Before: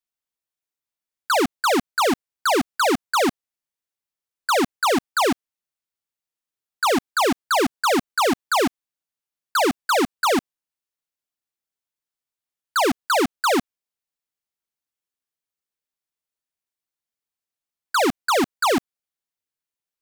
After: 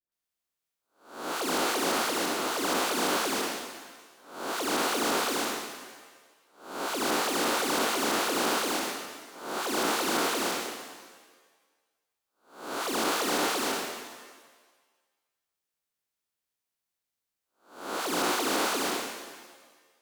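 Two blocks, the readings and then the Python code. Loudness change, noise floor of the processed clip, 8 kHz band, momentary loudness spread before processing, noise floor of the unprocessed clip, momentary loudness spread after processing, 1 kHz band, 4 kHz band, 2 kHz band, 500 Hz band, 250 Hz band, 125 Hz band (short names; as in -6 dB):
-7.0 dB, under -85 dBFS, -1.0 dB, 4 LU, under -85 dBFS, 15 LU, -8.0 dB, -3.5 dB, -6.0 dB, -8.0 dB, -8.5 dB, -7.0 dB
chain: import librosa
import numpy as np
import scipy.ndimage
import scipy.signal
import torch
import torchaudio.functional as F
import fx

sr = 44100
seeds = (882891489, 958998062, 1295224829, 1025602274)

y = fx.spec_blur(x, sr, span_ms=357.0)
y = fx.dispersion(y, sr, late='highs', ms=122.0, hz=860.0)
y = fx.rev_shimmer(y, sr, seeds[0], rt60_s=1.4, semitones=7, shimmer_db=-8, drr_db=3.5)
y = y * librosa.db_to_amplitude(3.0)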